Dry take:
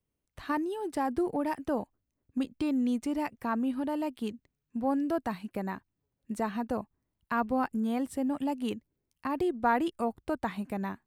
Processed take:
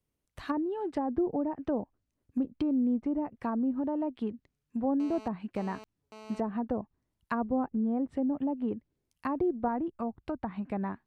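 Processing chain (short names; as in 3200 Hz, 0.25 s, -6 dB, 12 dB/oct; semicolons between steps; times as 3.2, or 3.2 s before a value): treble ducked by the level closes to 650 Hz, closed at -27 dBFS; 5–6.4 GSM buzz -49 dBFS; 9.68–10.65 bell 470 Hz -6.5 dB 1.2 oct; gain +1 dB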